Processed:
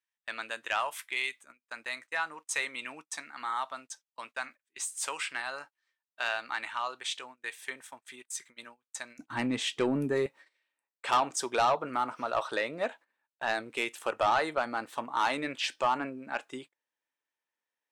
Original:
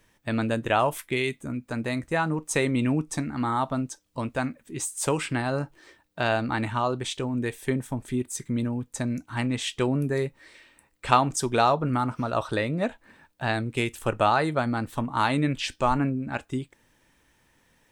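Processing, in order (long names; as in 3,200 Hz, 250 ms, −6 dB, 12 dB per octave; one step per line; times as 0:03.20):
high-pass filter 1,300 Hz 12 dB per octave, from 0:09.19 230 Hz, from 0:10.26 540 Hz
noise gate −47 dBFS, range −25 dB
high-shelf EQ 9,800 Hz −11 dB
soft clipping −18.5 dBFS, distortion −11 dB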